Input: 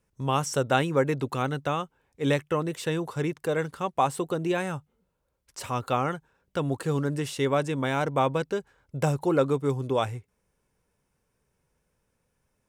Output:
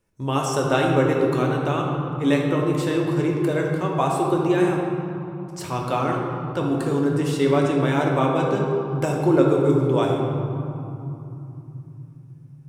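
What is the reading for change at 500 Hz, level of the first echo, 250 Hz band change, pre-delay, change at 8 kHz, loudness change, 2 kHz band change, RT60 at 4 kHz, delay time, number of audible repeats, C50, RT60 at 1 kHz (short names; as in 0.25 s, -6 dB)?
+6.5 dB, none, +9.0 dB, 3 ms, +2.0 dB, +6.0 dB, +3.5 dB, 1.6 s, none, none, 1.5 dB, 3.1 s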